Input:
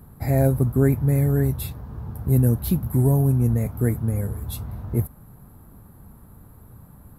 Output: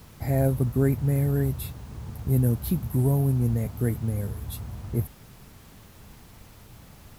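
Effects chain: added noise pink -49 dBFS; gain -4 dB

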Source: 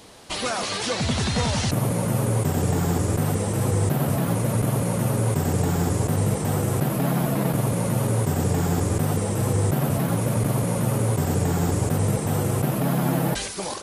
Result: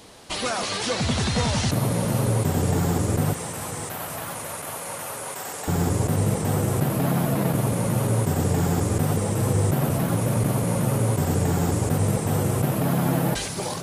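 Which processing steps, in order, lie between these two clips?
3.33–5.68 HPF 840 Hz 12 dB/oct; diffused feedback echo 0.521 s, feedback 58%, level -14.5 dB

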